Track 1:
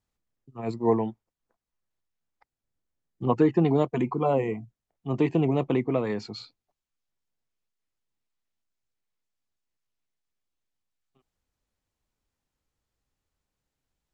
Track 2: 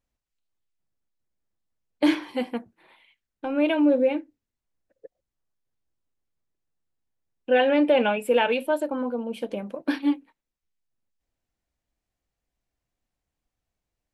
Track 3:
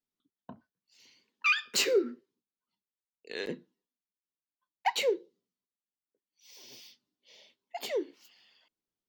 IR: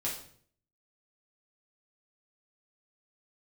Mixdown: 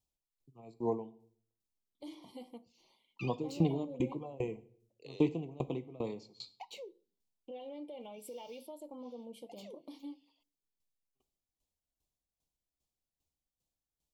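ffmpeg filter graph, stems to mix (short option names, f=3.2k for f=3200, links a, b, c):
-filter_complex "[0:a]aeval=exprs='val(0)*pow(10,-26*if(lt(mod(2.5*n/s,1),2*abs(2.5)/1000),1-mod(2.5*n/s,1)/(2*abs(2.5)/1000),(mod(2.5*n/s,1)-2*abs(2.5)/1000)/(1-2*abs(2.5)/1000))/20)':c=same,volume=-5.5dB,asplit=2[a][b];[b]volume=-14dB[c];[1:a]bandreject=f=2.6k:w=5.2,acompressor=threshold=-24dB:ratio=2.5,alimiter=level_in=0.5dB:limit=-24dB:level=0:latency=1:release=214,volume=-0.5dB,volume=-14.5dB,asplit=3[d][e][f];[e]volume=-22dB[g];[2:a]lowpass=f=3.2k:p=1,acompressor=threshold=-41dB:ratio=3,adelay=1750,volume=-8dB[h];[f]apad=whole_len=477768[i];[h][i]sidechaincompress=threshold=-48dB:ratio=8:attack=16:release=767[j];[3:a]atrim=start_sample=2205[k];[c][g]amix=inputs=2:normalize=0[l];[l][k]afir=irnorm=-1:irlink=0[m];[a][d][j][m]amix=inputs=4:normalize=0,asuperstop=centerf=1600:order=4:qfactor=1.1,highshelf=f=4k:g=7.5"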